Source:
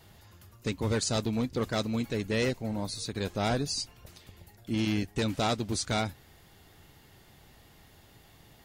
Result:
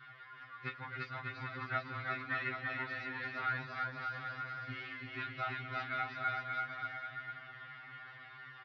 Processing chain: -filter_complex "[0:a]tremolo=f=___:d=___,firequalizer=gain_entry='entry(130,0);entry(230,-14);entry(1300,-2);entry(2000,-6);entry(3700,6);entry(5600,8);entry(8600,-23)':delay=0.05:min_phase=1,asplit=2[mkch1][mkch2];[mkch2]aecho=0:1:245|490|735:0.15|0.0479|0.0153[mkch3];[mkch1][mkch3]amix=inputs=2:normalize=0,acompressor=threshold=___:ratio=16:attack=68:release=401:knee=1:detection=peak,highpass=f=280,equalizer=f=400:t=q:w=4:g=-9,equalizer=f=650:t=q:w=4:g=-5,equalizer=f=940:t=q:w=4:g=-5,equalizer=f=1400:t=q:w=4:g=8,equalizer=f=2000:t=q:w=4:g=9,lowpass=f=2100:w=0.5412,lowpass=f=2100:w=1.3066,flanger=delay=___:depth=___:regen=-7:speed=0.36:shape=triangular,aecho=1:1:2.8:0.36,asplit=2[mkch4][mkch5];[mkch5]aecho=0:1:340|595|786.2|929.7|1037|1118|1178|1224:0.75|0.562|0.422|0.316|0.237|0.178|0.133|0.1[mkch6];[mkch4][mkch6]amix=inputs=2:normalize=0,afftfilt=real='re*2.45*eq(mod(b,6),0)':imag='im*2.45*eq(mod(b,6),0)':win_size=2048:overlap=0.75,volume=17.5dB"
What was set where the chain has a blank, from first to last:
50, 0.71, -47dB, 0.7, 9.5